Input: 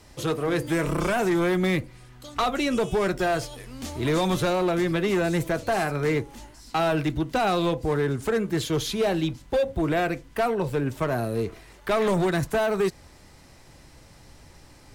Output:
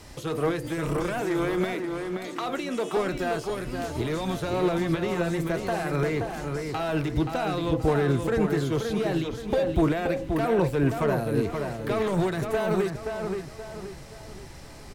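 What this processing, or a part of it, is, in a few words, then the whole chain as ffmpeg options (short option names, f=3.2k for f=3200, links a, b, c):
de-esser from a sidechain: -filter_complex "[0:a]asplit=2[a][b];[b]highpass=4.5k,apad=whole_len=659042[c];[a][c]sidechaincompress=threshold=-50dB:ratio=4:attack=1.7:release=73,asettb=1/sr,asplit=3[d][e][f];[d]atrim=end=1.214[g];[e]atrim=start=1.21:end=2.97,asetpts=PTS-STARTPTS,afade=t=in:d=0.004:c=qsin,afade=t=out:st=1.756:d=0.004:c=qsin,highpass=f=230:w=0.5412,highpass=f=230:w=1.3066[h];[f]atrim=start=2.966[i];[g][h]acrossfade=d=0.004:c1=hsin:c2=qsin[j];[j][i]acrossfade=d=0.004:c1=qsin:c2=hsin,asplit=2[k][l];[l]adelay=527,lowpass=f=3.2k:p=1,volume=-5dB,asplit=2[m][n];[n]adelay=527,lowpass=f=3.2k:p=1,volume=0.4,asplit=2[o][p];[p]adelay=527,lowpass=f=3.2k:p=1,volume=0.4,asplit=2[q][r];[r]adelay=527,lowpass=f=3.2k:p=1,volume=0.4,asplit=2[s][t];[t]adelay=527,lowpass=f=3.2k:p=1,volume=0.4[u];[k][m][o][q][s][u]amix=inputs=6:normalize=0,volume=5dB"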